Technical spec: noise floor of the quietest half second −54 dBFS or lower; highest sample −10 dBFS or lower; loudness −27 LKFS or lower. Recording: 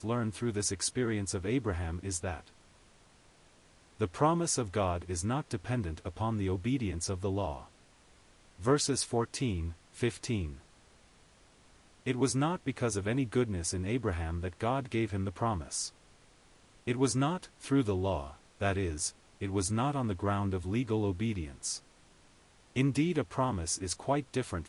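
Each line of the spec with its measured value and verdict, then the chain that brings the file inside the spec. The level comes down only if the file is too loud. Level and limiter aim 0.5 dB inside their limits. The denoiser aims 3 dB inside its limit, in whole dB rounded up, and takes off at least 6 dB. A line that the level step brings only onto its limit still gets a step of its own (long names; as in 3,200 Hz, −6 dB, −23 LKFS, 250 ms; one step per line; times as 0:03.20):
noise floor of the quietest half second −61 dBFS: in spec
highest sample −15.0 dBFS: in spec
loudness −33.0 LKFS: in spec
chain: no processing needed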